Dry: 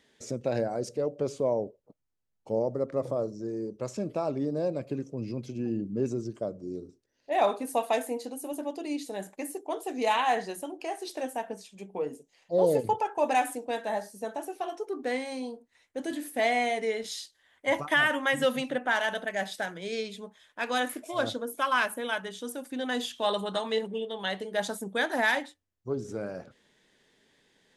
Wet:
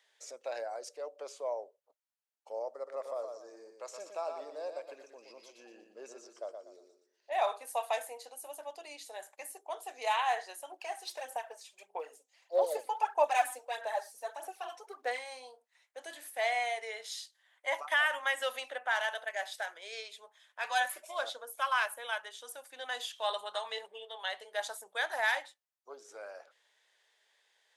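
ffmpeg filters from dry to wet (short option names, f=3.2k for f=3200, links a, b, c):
-filter_complex "[0:a]asettb=1/sr,asplit=3[a][b][c];[a]atrim=end=2.734[d];[b]atrim=start=2.73:end=7.31,asetpts=PTS-STARTPTS,afade=t=in:d=0.004:c=qsin,afade=t=out:st=4.576:d=0.004:c=qsin,aecho=1:1:120|240|360|480:0.501|0.17|0.0579|0.0197,atrim=end_sample=201978[e];[c]atrim=start=7.306[f];[d][e]acrossfade=d=0.004:c1=hsin:c2=qsin[g];[g][f]acrossfade=d=0.004:c1=qsin:c2=hsin,asettb=1/sr,asplit=3[h][i][j];[h]atrim=end=10.714[k];[i]atrim=start=10.71:end=15.19,asetpts=PTS-STARTPTS,afade=t=in:d=0.004:c=qsin,afade=t=out:st=4.476:d=0.004:c=qsin,aphaser=in_gain=1:out_gain=1:delay=4:decay=0.58:speed=1.6:type=sinusoidal[l];[j]atrim=start=15.186[m];[k][l]acrossfade=d=0.004:c1=hsin:c2=qsin[n];[n][m]acrossfade=d=0.004:c1=qsin:c2=hsin,asettb=1/sr,asplit=3[o][p][q];[o]atrim=end=20.644[r];[p]atrim=start=20.64:end=21.07,asetpts=PTS-STARTPTS,afade=t=in:d=0.004:c=qsin,afade=t=out:st=0.426:d=0.004:c=qsin,aecho=1:1:5.2:0.93,atrim=end_sample=18963[s];[q]atrim=start=21.066[t];[r][s]acrossfade=d=0.004:c1=hsin:c2=qsin[u];[u][t]acrossfade=d=0.004:c1=qsin:c2=hsin,highpass=f=620:w=0.5412,highpass=f=620:w=1.3066,volume=-4dB"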